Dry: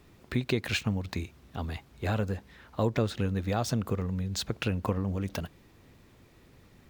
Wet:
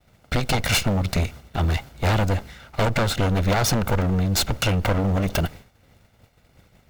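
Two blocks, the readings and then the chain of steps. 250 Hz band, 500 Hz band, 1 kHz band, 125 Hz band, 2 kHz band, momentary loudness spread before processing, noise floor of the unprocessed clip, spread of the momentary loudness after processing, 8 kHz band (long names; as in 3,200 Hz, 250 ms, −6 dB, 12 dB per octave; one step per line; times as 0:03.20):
+6.5 dB, +7.5 dB, +11.5 dB, +9.0 dB, +10.5 dB, 10 LU, −59 dBFS, 6 LU, +13.5 dB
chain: lower of the sound and its delayed copy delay 1.4 ms
downward expander −48 dBFS
sine wavefolder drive 12 dB, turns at −15.5 dBFS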